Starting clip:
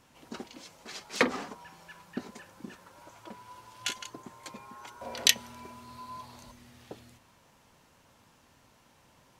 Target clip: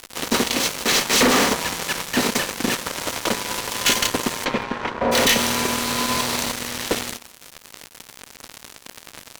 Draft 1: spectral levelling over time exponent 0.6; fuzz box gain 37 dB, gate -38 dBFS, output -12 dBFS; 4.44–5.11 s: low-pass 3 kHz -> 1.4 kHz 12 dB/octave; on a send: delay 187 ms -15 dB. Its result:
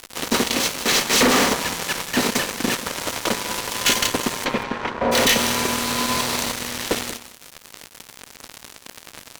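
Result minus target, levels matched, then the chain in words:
echo-to-direct +8.5 dB
spectral levelling over time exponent 0.6; fuzz box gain 37 dB, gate -38 dBFS, output -12 dBFS; 4.44–5.11 s: low-pass 3 kHz -> 1.4 kHz 12 dB/octave; on a send: delay 187 ms -23.5 dB

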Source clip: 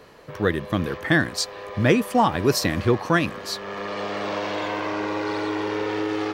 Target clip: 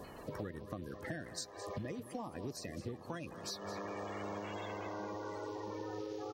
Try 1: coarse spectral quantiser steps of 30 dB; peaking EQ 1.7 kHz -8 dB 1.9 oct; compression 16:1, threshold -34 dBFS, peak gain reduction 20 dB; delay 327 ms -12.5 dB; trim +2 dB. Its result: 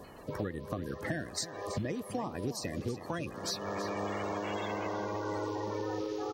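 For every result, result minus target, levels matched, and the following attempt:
echo 111 ms late; compression: peak gain reduction -7 dB
coarse spectral quantiser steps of 30 dB; peaking EQ 1.7 kHz -8 dB 1.9 oct; compression 16:1, threshold -34 dBFS, peak gain reduction 20 dB; delay 216 ms -12.5 dB; trim +2 dB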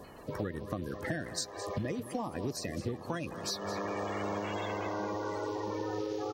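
compression: peak gain reduction -7 dB
coarse spectral quantiser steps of 30 dB; peaking EQ 1.7 kHz -8 dB 1.9 oct; compression 16:1, threshold -41.5 dBFS, peak gain reduction 27 dB; delay 216 ms -12.5 dB; trim +2 dB

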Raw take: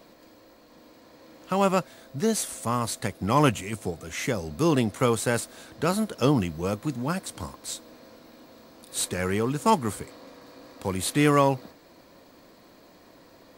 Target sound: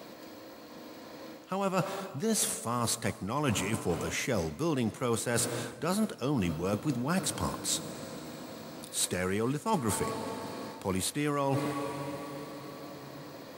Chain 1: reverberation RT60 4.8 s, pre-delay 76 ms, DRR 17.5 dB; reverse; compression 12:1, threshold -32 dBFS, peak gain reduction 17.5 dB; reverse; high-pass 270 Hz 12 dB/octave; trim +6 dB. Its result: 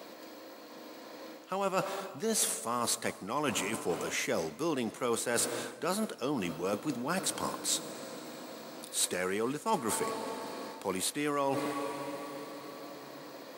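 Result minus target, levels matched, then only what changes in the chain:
125 Hz band -9.0 dB
change: high-pass 88 Hz 12 dB/octave

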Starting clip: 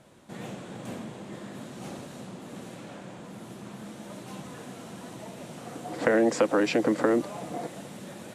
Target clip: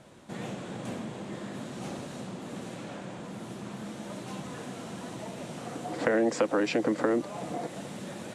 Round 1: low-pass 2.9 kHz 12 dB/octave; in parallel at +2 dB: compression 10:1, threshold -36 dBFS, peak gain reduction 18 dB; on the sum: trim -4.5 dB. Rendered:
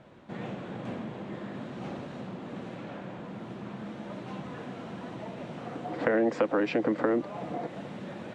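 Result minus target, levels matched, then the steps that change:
8 kHz band -15.5 dB
change: low-pass 10 kHz 12 dB/octave

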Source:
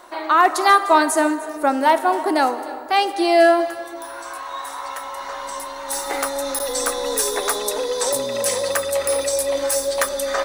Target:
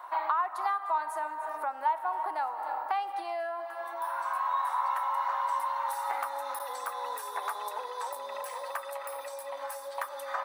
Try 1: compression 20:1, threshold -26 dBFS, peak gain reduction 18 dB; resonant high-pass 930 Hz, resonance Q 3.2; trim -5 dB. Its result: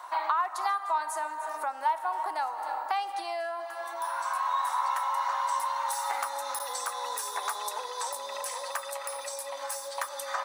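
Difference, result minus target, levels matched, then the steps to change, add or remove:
8 kHz band +9.5 dB
add after resonant high-pass: peaking EQ 6.6 kHz -14.5 dB 1.7 oct

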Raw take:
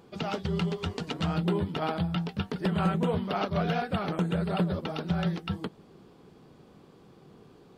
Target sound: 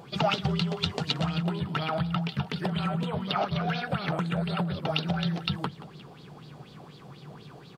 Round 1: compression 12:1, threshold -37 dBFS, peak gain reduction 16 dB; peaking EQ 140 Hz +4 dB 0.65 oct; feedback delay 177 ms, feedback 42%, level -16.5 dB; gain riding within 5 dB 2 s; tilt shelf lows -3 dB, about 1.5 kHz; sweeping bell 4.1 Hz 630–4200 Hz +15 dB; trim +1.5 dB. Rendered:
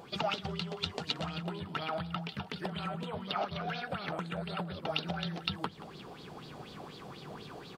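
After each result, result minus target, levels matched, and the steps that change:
compression: peak gain reduction +5.5 dB; 125 Hz band -3.0 dB
change: compression 12:1, threshold -31 dBFS, peak gain reduction 10.5 dB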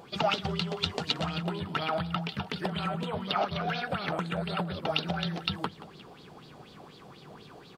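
125 Hz band -4.0 dB
change: peaking EQ 140 Hz +13.5 dB 0.65 oct

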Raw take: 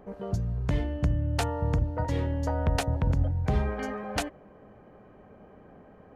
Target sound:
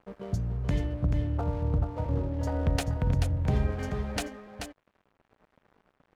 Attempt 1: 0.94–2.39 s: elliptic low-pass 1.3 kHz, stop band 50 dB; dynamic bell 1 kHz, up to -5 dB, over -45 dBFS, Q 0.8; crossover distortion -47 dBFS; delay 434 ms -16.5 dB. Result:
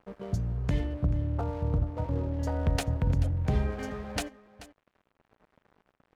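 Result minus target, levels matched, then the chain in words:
echo-to-direct -10 dB
0.94–2.39 s: elliptic low-pass 1.3 kHz, stop band 50 dB; dynamic bell 1 kHz, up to -5 dB, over -45 dBFS, Q 0.8; crossover distortion -47 dBFS; delay 434 ms -6.5 dB

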